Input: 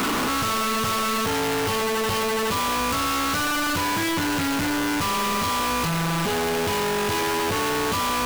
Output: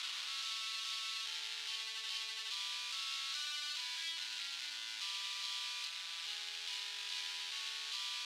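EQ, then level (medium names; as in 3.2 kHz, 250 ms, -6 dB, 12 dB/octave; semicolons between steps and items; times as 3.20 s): ladder band-pass 4.5 kHz, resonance 40%; treble shelf 4 kHz -8.5 dB; +3.5 dB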